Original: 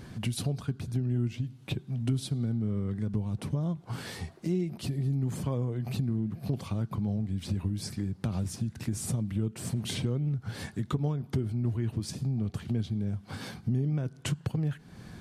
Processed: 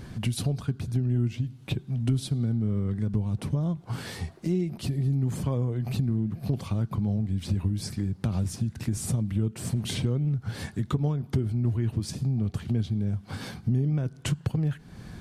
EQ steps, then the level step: low shelf 64 Hz +9 dB; +2.0 dB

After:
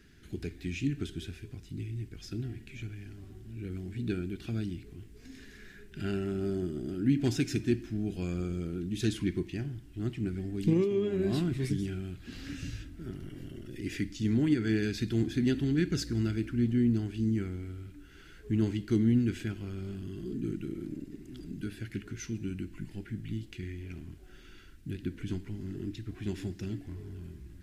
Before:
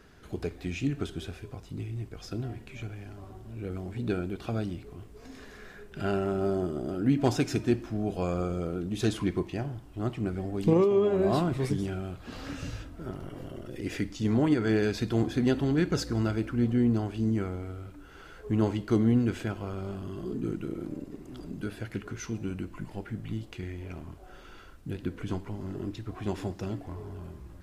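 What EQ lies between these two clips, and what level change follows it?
band shelf 770 Hz -15 dB; -1.5 dB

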